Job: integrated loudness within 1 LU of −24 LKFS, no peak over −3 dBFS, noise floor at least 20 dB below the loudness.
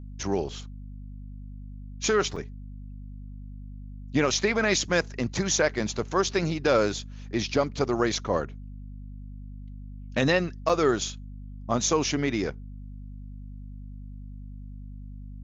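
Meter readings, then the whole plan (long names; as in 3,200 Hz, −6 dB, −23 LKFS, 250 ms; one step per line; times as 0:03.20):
number of dropouts 2; longest dropout 5.0 ms; mains hum 50 Hz; hum harmonics up to 250 Hz; level of the hum −38 dBFS; integrated loudness −26.5 LKFS; sample peak −11.5 dBFS; target loudness −24.0 LKFS
→ repair the gap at 0:02.36/0:10.69, 5 ms
mains-hum notches 50/100/150/200/250 Hz
level +2.5 dB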